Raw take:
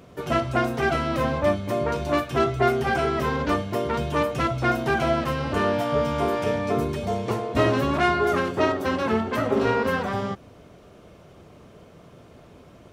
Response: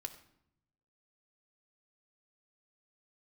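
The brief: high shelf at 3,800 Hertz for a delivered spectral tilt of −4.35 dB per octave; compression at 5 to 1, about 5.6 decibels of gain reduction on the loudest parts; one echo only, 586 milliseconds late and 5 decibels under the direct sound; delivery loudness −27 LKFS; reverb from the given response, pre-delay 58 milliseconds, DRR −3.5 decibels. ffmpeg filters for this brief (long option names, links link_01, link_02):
-filter_complex "[0:a]highshelf=frequency=3800:gain=7.5,acompressor=threshold=-22dB:ratio=5,aecho=1:1:586:0.562,asplit=2[link_01][link_02];[1:a]atrim=start_sample=2205,adelay=58[link_03];[link_02][link_03]afir=irnorm=-1:irlink=0,volume=6dB[link_04];[link_01][link_04]amix=inputs=2:normalize=0,volume=-6.5dB"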